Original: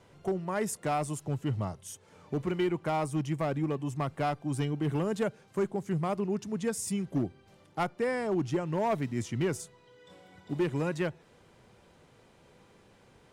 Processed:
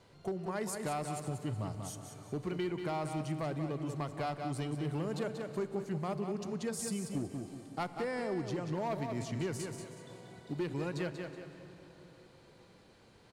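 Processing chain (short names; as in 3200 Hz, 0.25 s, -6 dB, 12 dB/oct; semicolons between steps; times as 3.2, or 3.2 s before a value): bell 4300 Hz +9.5 dB 0.28 oct; feedback echo 0.186 s, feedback 32%, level -8 dB; plate-style reverb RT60 4.5 s, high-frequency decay 0.75×, DRR 13 dB; compressor 2:1, threshold -32 dBFS, peak gain reduction 5 dB; gain -3 dB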